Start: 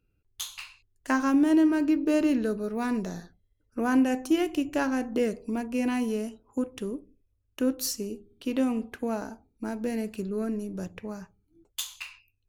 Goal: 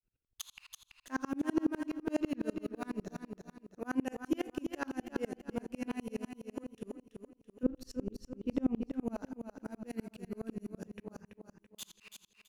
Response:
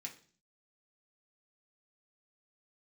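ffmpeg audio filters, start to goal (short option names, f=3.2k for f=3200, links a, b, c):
-filter_complex "[0:a]asettb=1/sr,asplit=3[a][b][c];[a]atrim=end=7.634[d];[b]atrim=start=7.63:end=8.93,asetpts=PTS-STARTPTS,afade=t=in:d=0.004:c=qsin,afade=t=out:st=1.296:d=0.004:c=qsin,aemphasis=mode=reproduction:type=riaa[e];[c]atrim=start=8.926[f];[d][e]acrossfade=d=0.004:c1=hsin:c2=qsin[g];[g][f]acrossfade=d=0.004:c1=qsin:c2=hsin,flanger=delay=5.4:depth=4.9:regen=-84:speed=0.23:shape=triangular,asplit=2[h][i];[i]aecho=0:1:332|664|996|1328|1660:0.473|0.199|0.0835|0.0351|0.0147[j];[h][j]amix=inputs=2:normalize=0,aeval=exprs='val(0)*pow(10,-35*if(lt(mod(-12*n/s,1),2*abs(-12)/1000),1-mod(-12*n/s,1)/(2*abs(-12)/1000),(mod(-12*n/s,1)-2*abs(-12)/1000)/(1-2*abs(-12)/1000))/20)':c=same,volume=1dB"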